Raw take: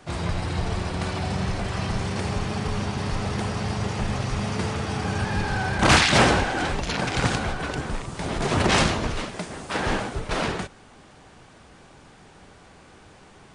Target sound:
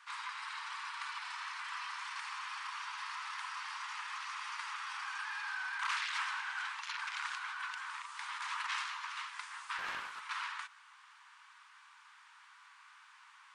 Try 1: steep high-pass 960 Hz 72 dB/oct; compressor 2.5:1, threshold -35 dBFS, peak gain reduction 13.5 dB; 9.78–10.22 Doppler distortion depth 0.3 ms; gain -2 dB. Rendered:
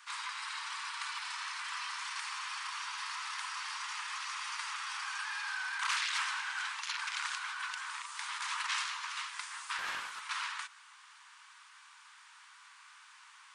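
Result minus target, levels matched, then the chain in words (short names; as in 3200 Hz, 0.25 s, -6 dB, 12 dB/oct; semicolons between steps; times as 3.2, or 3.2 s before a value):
8000 Hz band +6.0 dB
steep high-pass 960 Hz 72 dB/oct; compressor 2.5:1, threshold -35 dBFS, peak gain reduction 13.5 dB; high shelf 3900 Hz -11.5 dB; 9.78–10.22 Doppler distortion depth 0.3 ms; gain -2 dB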